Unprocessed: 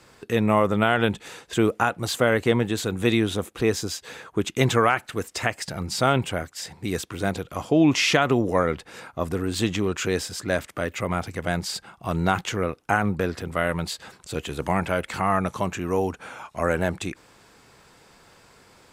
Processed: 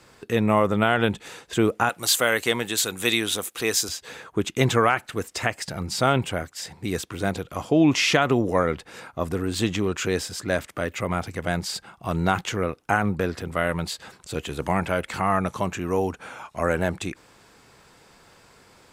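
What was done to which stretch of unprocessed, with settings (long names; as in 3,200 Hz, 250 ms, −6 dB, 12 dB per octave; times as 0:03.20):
0:01.89–0:03.89: spectral tilt +3.5 dB per octave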